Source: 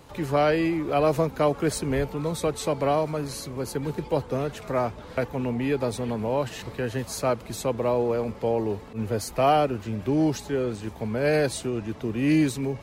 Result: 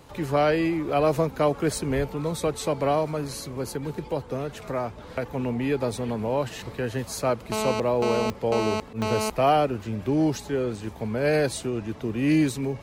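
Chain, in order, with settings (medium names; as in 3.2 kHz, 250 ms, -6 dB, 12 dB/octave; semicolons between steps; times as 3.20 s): 3.65–5.26 s: compression 1.5:1, threshold -30 dBFS, peak gain reduction 4 dB; 7.52–9.30 s: mobile phone buzz -27 dBFS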